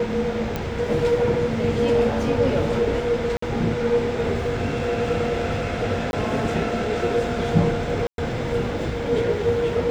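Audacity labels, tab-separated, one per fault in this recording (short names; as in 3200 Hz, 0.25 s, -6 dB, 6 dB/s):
0.560000	0.560000	pop -12 dBFS
3.370000	3.420000	gap 54 ms
6.110000	6.130000	gap 21 ms
8.070000	8.180000	gap 0.112 s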